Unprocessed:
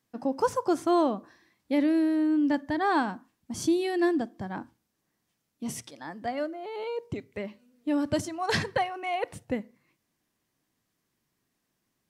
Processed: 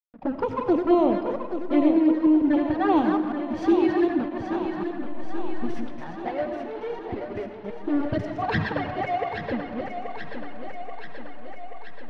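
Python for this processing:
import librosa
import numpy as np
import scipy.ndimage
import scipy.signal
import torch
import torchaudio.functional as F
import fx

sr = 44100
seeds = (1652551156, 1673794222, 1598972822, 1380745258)

p1 = fx.reverse_delay(x, sr, ms=151, wet_db=-4.0)
p2 = fx.dereverb_blind(p1, sr, rt60_s=0.56)
p3 = 10.0 ** (-29.0 / 20.0) * np.tanh(p2 / 10.0 ** (-29.0 / 20.0))
p4 = p2 + (p3 * 10.0 ** (-5.0 / 20.0))
p5 = fx.mod_noise(p4, sr, seeds[0], snr_db=17, at=(2.95, 4.06), fade=0.02)
p6 = fx.backlash(p5, sr, play_db=-32.0)
p7 = fx.env_flanger(p6, sr, rest_ms=9.5, full_db=-19.0)
p8 = fx.air_absorb(p7, sr, metres=320.0)
p9 = p8 + fx.echo_thinned(p8, sr, ms=831, feedback_pct=68, hz=210.0, wet_db=-8, dry=0)
p10 = fx.rev_freeverb(p9, sr, rt60_s=1.3, hf_ratio=0.65, predelay_ms=45, drr_db=8.0)
p11 = fx.end_taper(p10, sr, db_per_s=190.0)
y = p11 * 10.0 ** (4.5 / 20.0)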